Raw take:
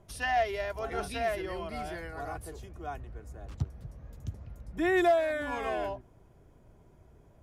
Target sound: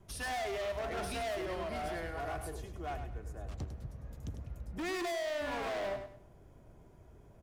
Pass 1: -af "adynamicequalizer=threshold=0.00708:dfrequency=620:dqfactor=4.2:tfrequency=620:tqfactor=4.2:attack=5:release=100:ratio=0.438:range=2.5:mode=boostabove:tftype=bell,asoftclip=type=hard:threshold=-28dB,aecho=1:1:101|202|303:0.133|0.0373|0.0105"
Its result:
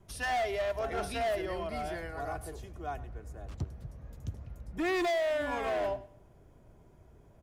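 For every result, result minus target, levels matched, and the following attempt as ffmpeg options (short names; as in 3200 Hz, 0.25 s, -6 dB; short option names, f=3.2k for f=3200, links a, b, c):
echo-to-direct -9 dB; hard clip: distortion -4 dB
-af "adynamicequalizer=threshold=0.00708:dfrequency=620:dqfactor=4.2:tfrequency=620:tqfactor=4.2:attack=5:release=100:ratio=0.438:range=2.5:mode=boostabove:tftype=bell,asoftclip=type=hard:threshold=-28dB,aecho=1:1:101|202|303:0.376|0.105|0.0295"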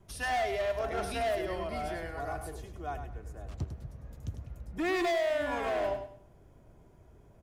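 hard clip: distortion -4 dB
-af "adynamicequalizer=threshold=0.00708:dfrequency=620:dqfactor=4.2:tfrequency=620:tqfactor=4.2:attack=5:release=100:ratio=0.438:range=2.5:mode=boostabove:tftype=bell,asoftclip=type=hard:threshold=-35.5dB,aecho=1:1:101|202|303:0.376|0.105|0.0295"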